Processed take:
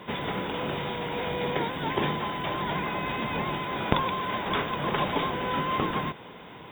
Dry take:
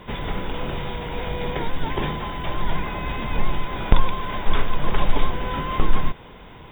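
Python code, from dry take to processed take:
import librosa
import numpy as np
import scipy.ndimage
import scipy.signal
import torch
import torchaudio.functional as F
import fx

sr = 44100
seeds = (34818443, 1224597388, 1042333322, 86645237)

y = scipy.signal.sosfilt(scipy.signal.butter(2, 150.0, 'highpass', fs=sr, output='sos'), x)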